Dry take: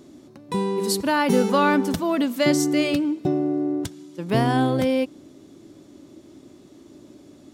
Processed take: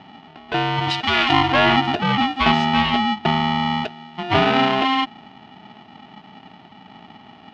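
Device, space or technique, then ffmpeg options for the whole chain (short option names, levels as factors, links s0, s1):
ring modulator pedal into a guitar cabinet: -filter_complex "[0:a]aeval=exprs='val(0)*sgn(sin(2*PI*530*n/s))':c=same,highpass=85,equalizer=f=98:t=q:w=4:g=6,equalizer=f=180:t=q:w=4:g=4,equalizer=f=630:t=q:w=4:g=4,equalizer=f=2900:t=q:w=4:g=7,lowpass=f=3800:w=0.5412,lowpass=f=3800:w=1.3066,asettb=1/sr,asplit=3[s0][s1][s2];[s0]atrim=end=0.904[s3];[s1]atrim=start=0.9:end=1.32,asetpts=PTS-STARTPTS,afade=t=in:d=0.004:c=qsin,afade=t=out:st=0.416:d=0.004:c=qsin,tiltshelf=f=1400:g=-5.5[s4];[s2]atrim=start=1.316[s5];[s3][s4]acrossfade=d=0.004:c1=hsin:c2=qsin[s6];[s6][s5]acrossfade=d=0.004:c1=qsin:c2=hsin,volume=1.26"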